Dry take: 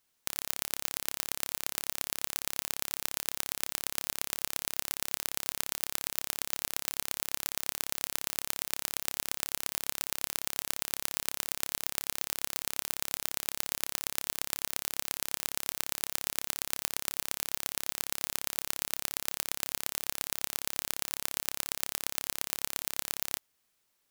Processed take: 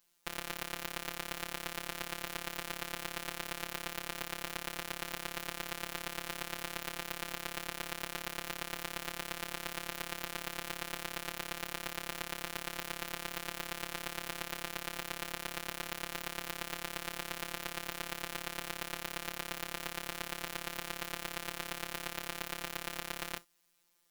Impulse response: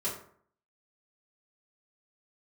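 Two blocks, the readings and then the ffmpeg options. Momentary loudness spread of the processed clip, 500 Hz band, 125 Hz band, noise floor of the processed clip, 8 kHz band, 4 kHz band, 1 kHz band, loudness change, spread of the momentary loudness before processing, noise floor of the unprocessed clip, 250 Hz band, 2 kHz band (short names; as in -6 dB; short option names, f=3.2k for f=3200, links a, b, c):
0 LU, +2.5 dB, +2.5 dB, -49 dBFS, -10.5 dB, -3.5 dB, +2.0 dB, -6.0 dB, 1 LU, -76 dBFS, +3.0 dB, +1.5 dB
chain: -filter_complex "[0:a]asplit=2[a][b];[1:a]atrim=start_sample=2205,atrim=end_sample=3087,lowshelf=f=65:g=11.5[c];[b][c]afir=irnorm=-1:irlink=0,volume=-18dB[d];[a][d]amix=inputs=2:normalize=0,acrossover=split=3600[e][f];[f]acompressor=threshold=-35dB:ratio=4:attack=1:release=60[g];[e][g]amix=inputs=2:normalize=0,afftfilt=real='hypot(re,im)*cos(PI*b)':imag='0':win_size=1024:overlap=0.75,volume=4.5dB"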